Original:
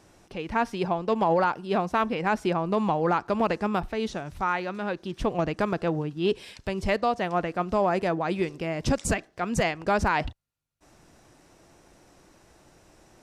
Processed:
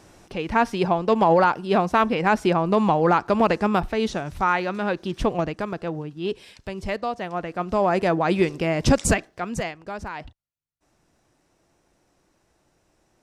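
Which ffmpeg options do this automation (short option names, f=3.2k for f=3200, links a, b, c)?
-af "volume=15dB,afade=t=out:st=5.17:d=0.42:silence=0.398107,afade=t=in:st=7.41:d=0.95:silence=0.334965,afade=t=out:st=9.04:d=0.41:silence=0.421697,afade=t=out:st=9.45:d=0.39:silence=0.354813"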